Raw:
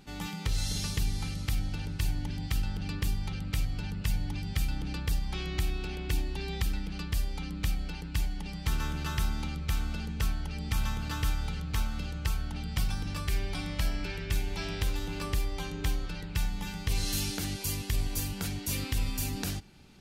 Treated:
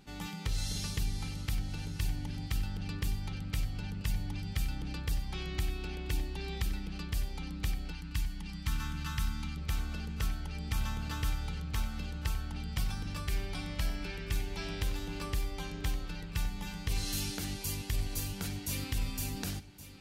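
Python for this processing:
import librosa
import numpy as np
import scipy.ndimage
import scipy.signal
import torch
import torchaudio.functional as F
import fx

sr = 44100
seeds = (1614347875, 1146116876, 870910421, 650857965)

y = fx.band_shelf(x, sr, hz=520.0, db=-13.5, octaves=1.3, at=(7.92, 9.57))
y = y + 10.0 ** (-15.0 / 20.0) * np.pad(y, (int(1119 * sr / 1000.0), 0))[:len(y)]
y = y * librosa.db_to_amplitude(-3.5)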